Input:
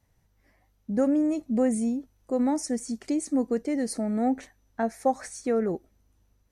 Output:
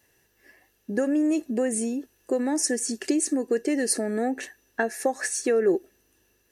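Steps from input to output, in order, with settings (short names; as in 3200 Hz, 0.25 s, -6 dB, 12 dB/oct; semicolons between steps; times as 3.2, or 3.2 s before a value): compressor 4:1, threshold -27 dBFS, peak gain reduction 8 dB; tilt +3 dB/oct; small resonant body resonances 380/1700/2700 Hz, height 15 dB, ringing for 25 ms; gain +3 dB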